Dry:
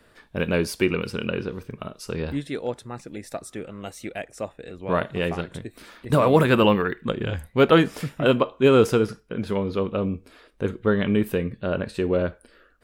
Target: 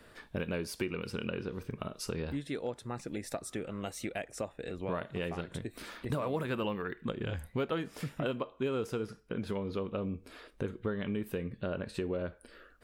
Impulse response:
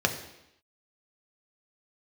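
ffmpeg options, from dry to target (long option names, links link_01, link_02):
-af "acompressor=threshold=-34dB:ratio=4"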